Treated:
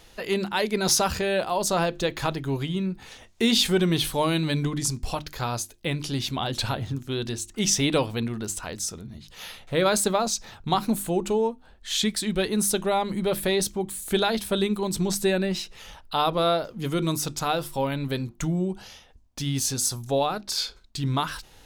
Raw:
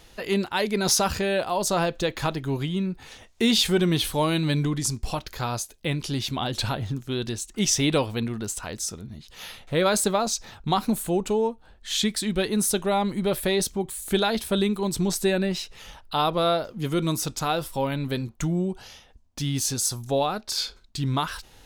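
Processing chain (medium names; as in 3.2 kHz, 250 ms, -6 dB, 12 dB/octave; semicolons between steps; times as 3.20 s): hum notches 50/100/150/200/250/300/350 Hz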